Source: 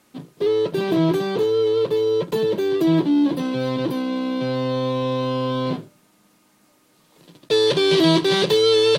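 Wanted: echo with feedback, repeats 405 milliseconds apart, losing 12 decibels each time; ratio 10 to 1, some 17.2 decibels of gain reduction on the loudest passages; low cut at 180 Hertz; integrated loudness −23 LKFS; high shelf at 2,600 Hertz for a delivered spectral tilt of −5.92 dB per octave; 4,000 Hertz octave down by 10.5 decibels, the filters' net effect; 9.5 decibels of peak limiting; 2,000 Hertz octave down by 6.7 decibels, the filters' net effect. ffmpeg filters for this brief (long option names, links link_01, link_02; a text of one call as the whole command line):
ffmpeg -i in.wav -af "highpass=180,equalizer=frequency=2000:width_type=o:gain=-4.5,highshelf=frequency=2600:gain=-6.5,equalizer=frequency=4000:width_type=o:gain=-6,acompressor=threshold=-33dB:ratio=10,alimiter=level_in=6dB:limit=-24dB:level=0:latency=1,volume=-6dB,aecho=1:1:405|810|1215:0.251|0.0628|0.0157,volume=14.5dB" out.wav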